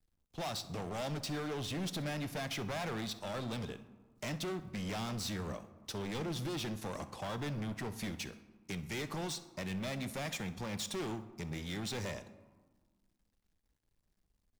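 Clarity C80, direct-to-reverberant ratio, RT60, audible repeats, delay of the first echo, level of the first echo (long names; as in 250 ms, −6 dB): 16.0 dB, 11.5 dB, 1.5 s, 1, 64 ms, −19.0 dB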